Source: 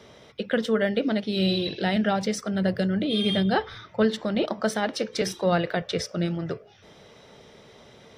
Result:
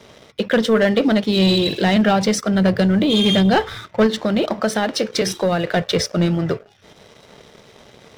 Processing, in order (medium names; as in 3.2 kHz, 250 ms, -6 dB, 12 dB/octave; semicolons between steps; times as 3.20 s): 4.06–5.73 s: compression, threshold -24 dBFS, peak gain reduction 7 dB; waveshaping leveller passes 2; trim +2.5 dB